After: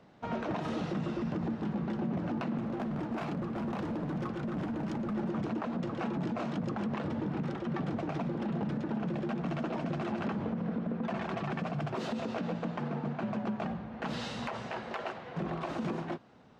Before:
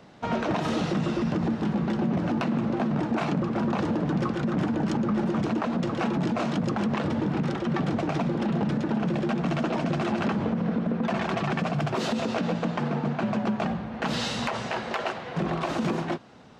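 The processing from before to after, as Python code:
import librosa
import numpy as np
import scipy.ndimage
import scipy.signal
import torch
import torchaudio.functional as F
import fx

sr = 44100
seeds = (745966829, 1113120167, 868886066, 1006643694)

y = fx.high_shelf(x, sr, hz=3600.0, db=-7.5)
y = fx.overload_stage(y, sr, gain_db=23.5, at=(2.57, 5.13), fade=0.02)
y = y * 10.0 ** (-7.5 / 20.0)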